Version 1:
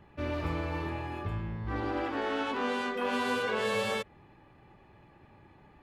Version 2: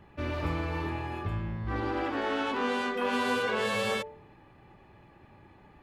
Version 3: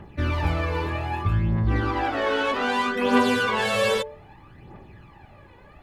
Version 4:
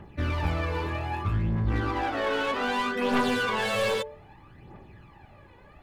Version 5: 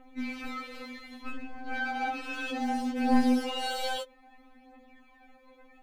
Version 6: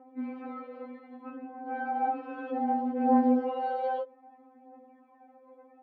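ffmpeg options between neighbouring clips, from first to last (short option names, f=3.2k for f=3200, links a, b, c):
-af "bandreject=f=146.8:t=h:w=4,bandreject=f=293.6:t=h:w=4,bandreject=f=440.4:t=h:w=4,bandreject=f=587.2:t=h:w=4,bandreject=f=734:t=h:w=4,bandreject=f=880.8:t=h:w=4,volume=2dB"
-af "aphaser=in_gain=1:out_gain=1:delay=2.1:decay=0.57:speed=0.63:type=triangular,volume=5.5dB"
-af "aeval=exprs='clip(val(0),-1,0.0841)':c=same,volume=-3dB"
-af "afftfilt=real='re*3.46*eq(mod(b,12),0)':imag='im*3.46*eq(mod(b,12),0)':win_size=2048:overlap=0.75"
-af "asuperpass=centerf=510:order=4:qfactor=0.77,volume=5dB"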